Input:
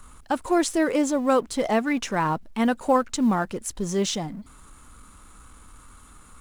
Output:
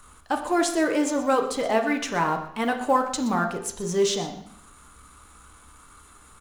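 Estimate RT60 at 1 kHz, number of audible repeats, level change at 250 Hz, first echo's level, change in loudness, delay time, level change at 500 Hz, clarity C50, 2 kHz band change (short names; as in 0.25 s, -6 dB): 0.65 s, 1, -3.0 dB, -15.0 dB, -0.5 dB, 0.123 s, 0.0 dB, 8.5 dB, +1.5 dB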